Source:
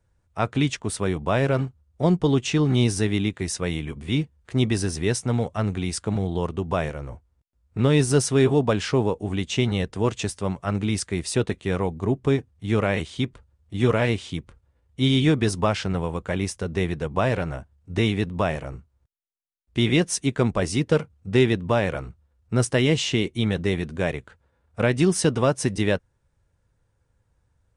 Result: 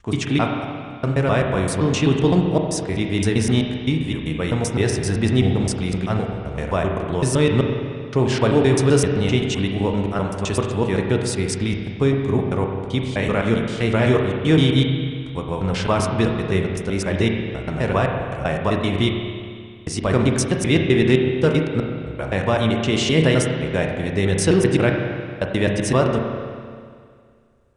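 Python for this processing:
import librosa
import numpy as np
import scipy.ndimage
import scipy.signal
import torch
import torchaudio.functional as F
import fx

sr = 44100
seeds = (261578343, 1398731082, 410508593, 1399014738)

y = fx.block_reorder(x, sr, ms=129.0, group=7)
y = fx.rev_spring(y, sr, rt60_s=2.1, pass_ms=(31, 44), chirp_ms=55, drr_db=2.0)
y = y * librosa.db_to_amplitude(2.0)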